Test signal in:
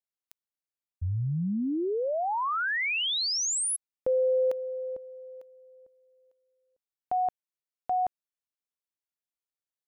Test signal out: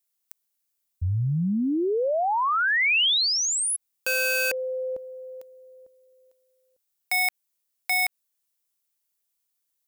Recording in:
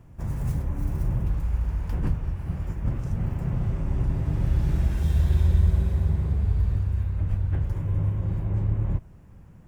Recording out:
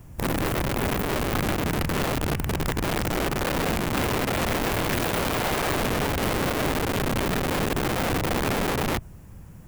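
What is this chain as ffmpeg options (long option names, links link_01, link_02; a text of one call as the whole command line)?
ffmpeg -i in.wav -filter_complex "[0:a]aeval=exprs='(mod(17.8*val(0)+1,2)-1)/17.8':channel_layout=same,crystalizer=i=2.5:c=0,acrossover=split=3300[link_01][link_02];[link_02]acompressor=threshold=-32dB:ratio=4:attack=1:release=60[link_03];[link_01][link_03]amix=inputs=2:normalize=0,volume=4.5dB" out.wav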